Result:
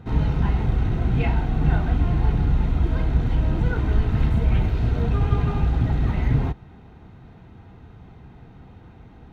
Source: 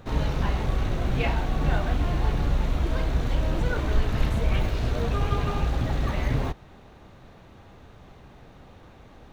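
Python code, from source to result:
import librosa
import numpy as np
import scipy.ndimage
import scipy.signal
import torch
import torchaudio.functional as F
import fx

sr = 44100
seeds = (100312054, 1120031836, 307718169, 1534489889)

y = fx.bass_treble(x, sr, bass_db=8, treble_db=-10)
y = fx.notch_comb(y, sr, f0_hz=570.0)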